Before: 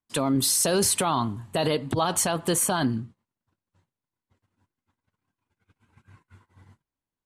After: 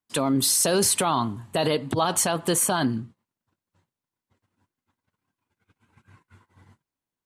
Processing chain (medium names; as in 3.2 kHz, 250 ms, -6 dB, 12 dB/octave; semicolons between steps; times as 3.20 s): bass shelf 61 Hz -11.5 dB; trim +1.5 dB